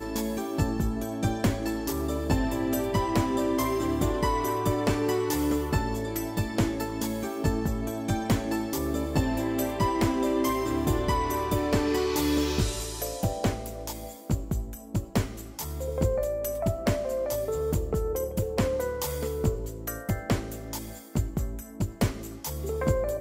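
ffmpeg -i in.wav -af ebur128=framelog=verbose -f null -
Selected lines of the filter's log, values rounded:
Integrated loudness:
  I:         -28.7 LUFS
  Threshold: -38.7 LUFS
Loudness range:
  LRA:         4.8 LU
  Threshold: -48.6 LUFS
  LRA low:   -31.5 LUFS
  LRA high:  -26.7 LUFS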